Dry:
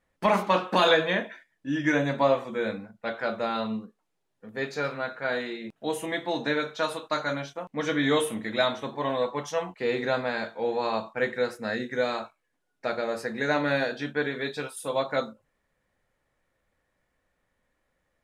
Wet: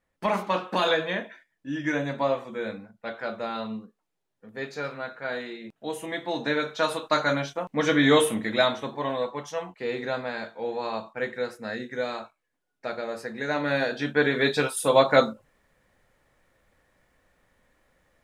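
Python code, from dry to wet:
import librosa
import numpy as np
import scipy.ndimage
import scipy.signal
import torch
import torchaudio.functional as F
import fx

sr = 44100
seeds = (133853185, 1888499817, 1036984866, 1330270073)

y = fx.gain(x, sr, db=fx.line((5.97, -3.0), (7.15, 5.0), (8.28, 5.0), (9.43, -3.0), (13.47, -3.0), (14.48, 9.0)))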